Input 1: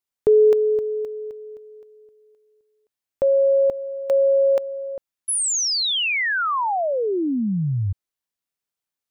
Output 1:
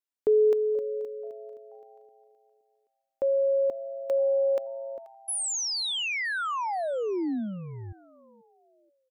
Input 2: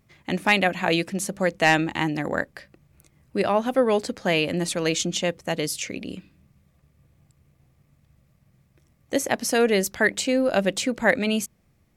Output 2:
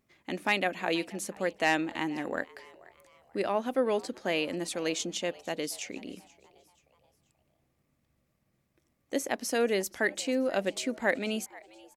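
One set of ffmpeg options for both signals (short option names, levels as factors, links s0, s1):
-filter_complex "[0:a]lowshelf=f=200:t=q:w=1.5:g=-7,asplit=4[s0][s1][s2][s3];[s1]adelay=482,afreqshift=120,volume=0.0794[s4];[s2]adelay=964,afreqshift=240,volume=0.0327[s5];[s3]adelay=1446,afreqshift=360,volume=0.0133[s6];[s0][s4][s5][s6]amix=inputs=4:normalize=0,volume=0.398"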